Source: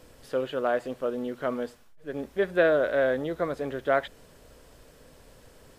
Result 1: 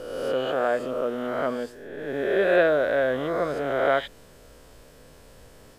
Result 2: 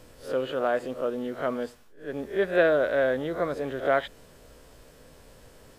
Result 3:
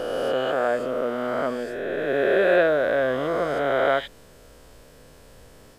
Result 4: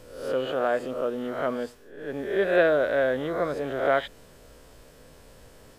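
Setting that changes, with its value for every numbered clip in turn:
reverse spectral sustain, rising 60 dB in: 1.4 s, 0.31 s, 2.96 s, 0.67 s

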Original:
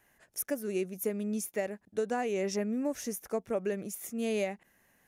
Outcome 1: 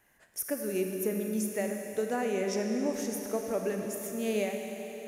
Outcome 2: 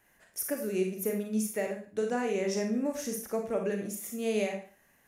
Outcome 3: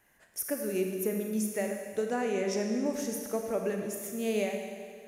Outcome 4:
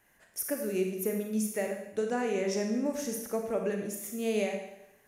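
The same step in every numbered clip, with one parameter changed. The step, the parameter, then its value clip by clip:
Schroeder reverb, RT60: 4 s, 0.39 s, 1.9 s, 0.83 s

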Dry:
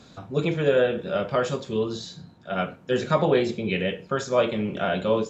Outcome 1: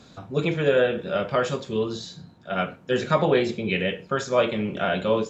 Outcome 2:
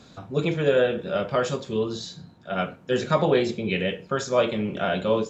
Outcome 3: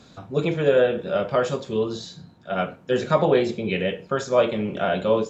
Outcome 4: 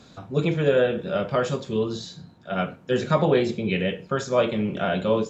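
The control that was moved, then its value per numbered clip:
dynamic bell, frequency: 2.1 kHz, 5.7 kHz, 630 Hz, 150 Hz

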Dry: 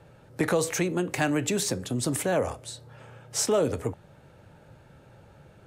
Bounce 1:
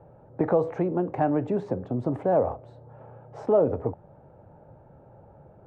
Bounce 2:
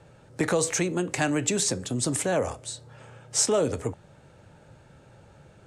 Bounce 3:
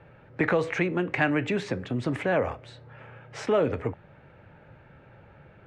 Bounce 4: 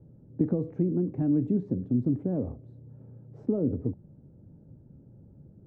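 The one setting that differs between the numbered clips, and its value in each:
resonant low-pass, frequency: 790 Hz, 8 kHz, 2.2 kHz, 260 Hz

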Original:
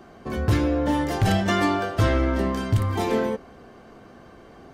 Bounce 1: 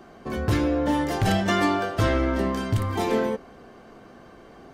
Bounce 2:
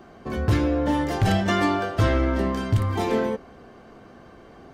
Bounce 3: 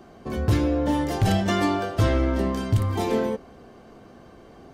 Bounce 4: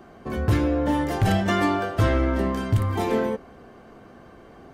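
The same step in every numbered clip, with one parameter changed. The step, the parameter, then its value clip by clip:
peaking EQ, frequency: 82 Hz, 13 kHz, 1.6 kHz, 5.1 kHz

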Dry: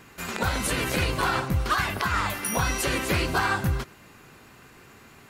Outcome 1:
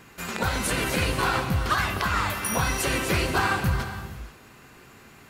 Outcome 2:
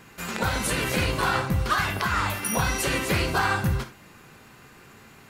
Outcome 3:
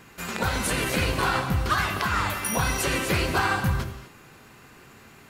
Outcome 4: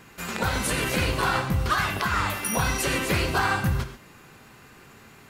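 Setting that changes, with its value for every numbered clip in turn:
gated-style reverb, gate: 520 ms, 90 ms, 270 ms, 160 ms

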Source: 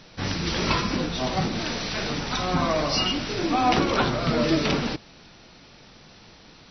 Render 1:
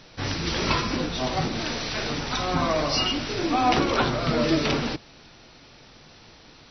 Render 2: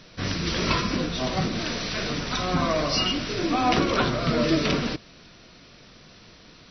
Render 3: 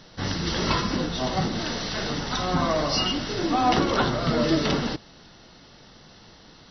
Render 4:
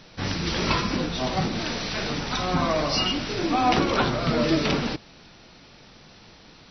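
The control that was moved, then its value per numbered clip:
band-stop, frequency: 190 Hz, 840 Hz, 2.4 kHz, 6.8 kHz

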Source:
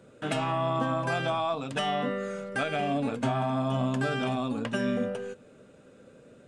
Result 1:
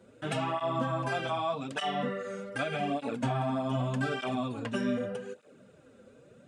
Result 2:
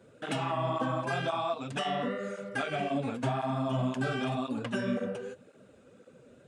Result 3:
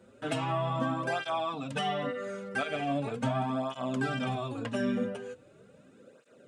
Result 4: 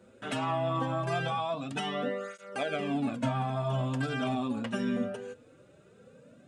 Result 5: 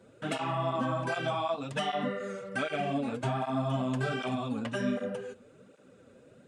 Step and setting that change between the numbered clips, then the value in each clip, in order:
cancelling through-zero flanger, nulls at: 0.83 Hz, 1.9 Hz, 0.4 Hz, 0.21 Hz, 1.3 Hz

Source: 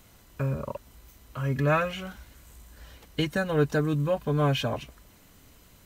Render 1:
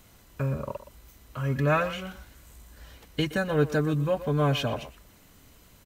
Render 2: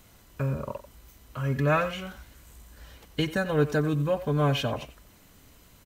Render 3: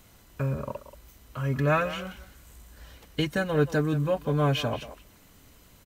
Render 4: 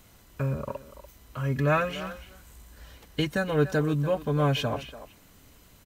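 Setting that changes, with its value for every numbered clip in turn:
speakerphone echo, time: 120 ms, 90 ms, 180 ms, 290 ms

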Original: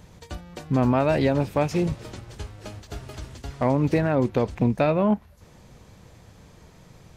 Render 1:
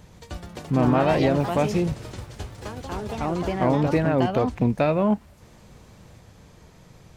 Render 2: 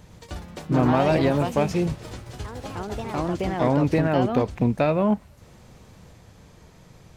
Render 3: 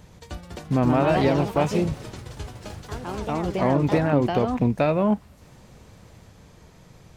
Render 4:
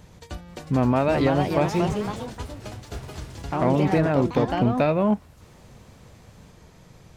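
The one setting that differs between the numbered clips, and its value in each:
ever faster or slower copies, time: 168 ms, 100 ms, 246 ms, 484 ms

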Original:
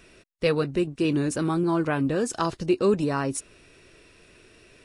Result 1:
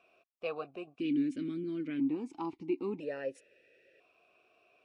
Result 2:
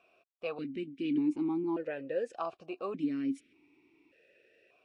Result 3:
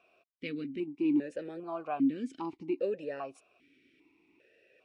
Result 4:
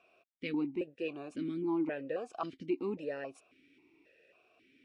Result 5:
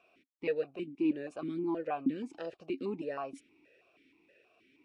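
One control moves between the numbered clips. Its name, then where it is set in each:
stepped vowel filter, rate: 1 Hz, 1.7 Hz, 2.5 Hz, 3.7 Hz, 6.3 Hz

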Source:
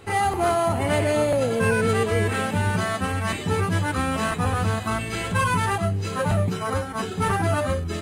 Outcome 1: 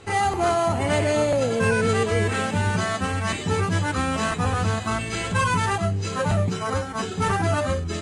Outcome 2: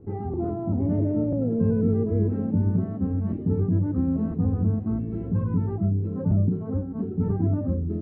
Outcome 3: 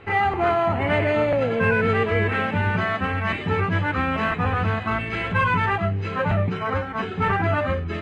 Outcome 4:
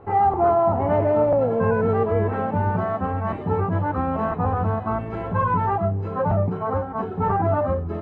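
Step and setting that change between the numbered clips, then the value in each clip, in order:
resonant low-pass, frequency: 7.1 kHz, 280 Hz, 2.3 kHz, 900 Hz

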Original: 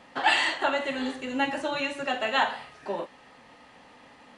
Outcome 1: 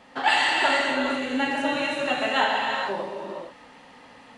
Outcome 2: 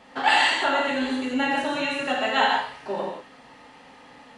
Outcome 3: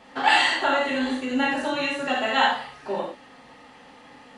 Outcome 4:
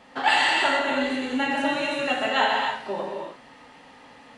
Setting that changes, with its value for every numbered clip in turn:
gated-style reverb, gate: 490 ms, 200 ms, 110 ms, 330 ms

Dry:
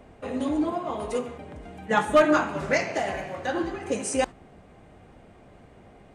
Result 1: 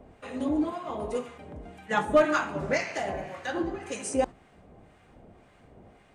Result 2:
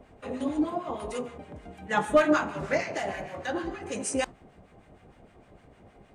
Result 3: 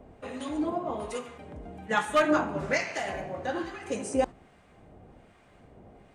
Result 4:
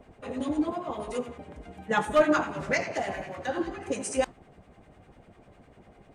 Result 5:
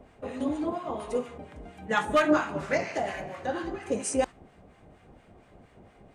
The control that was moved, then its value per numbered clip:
harmonic tremolo, rate: 1.9 Hz, 6.5 Hz, 1.2 Hz, 10 Hz, 4.3 Hz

